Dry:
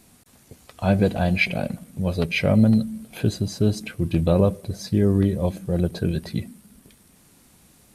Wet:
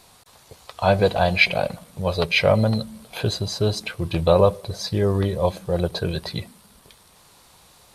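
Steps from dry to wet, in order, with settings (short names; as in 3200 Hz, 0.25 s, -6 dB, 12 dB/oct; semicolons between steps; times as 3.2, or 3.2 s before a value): graphic EQ 250/500/1000/4000 Hz -10/+5/+10/+9 dB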